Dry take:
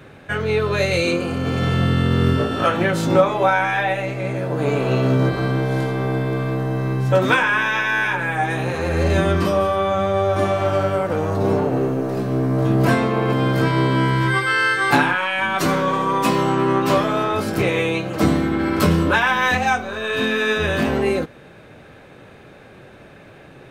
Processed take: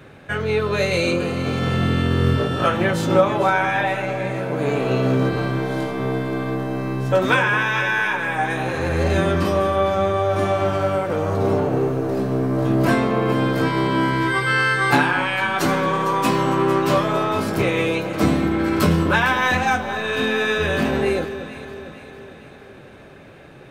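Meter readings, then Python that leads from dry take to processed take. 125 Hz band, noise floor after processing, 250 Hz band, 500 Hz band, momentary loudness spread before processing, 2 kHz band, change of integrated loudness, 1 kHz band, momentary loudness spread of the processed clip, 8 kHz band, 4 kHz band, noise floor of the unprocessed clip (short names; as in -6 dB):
-2.0 dB, -43 dBFS, -0.5 dB, -0.5 dB, 6 LU, -0.5 dB, -1.0 dB, -0.5 dB, 7 LU, -0.5 dB, -0.5 dB, -44 dBFS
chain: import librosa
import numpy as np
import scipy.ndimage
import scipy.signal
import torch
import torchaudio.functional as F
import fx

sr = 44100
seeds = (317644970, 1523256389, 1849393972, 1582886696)

y = fx.echo_alternate(x, sr, ms=227, hz=1100.0, feedback_pct=72, wet_db=-10.0)
y = y * 10.0 ** (-1.0 / 20.0)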